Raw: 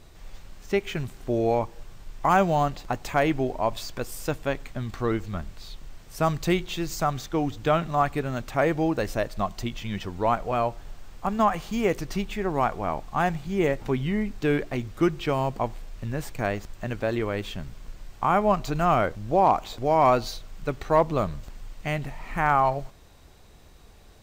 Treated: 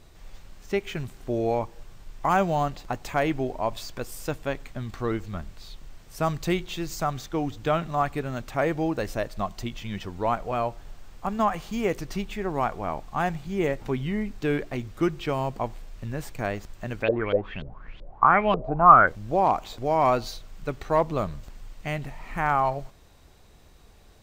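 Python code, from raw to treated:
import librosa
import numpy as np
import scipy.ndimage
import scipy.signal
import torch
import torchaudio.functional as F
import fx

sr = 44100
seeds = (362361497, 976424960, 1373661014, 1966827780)

y = fx.filter_lfo_lowpass(x, sr, shape='saw_up', hz=fx.line((17.02, 4.8), (19.06, 1.0)), low_hz=430.0, high_hz=3600.0, q=7.9, at=(17.02, 19.06), fade=0.02)
y = y * librosa.db_to_amplitude(-2.0)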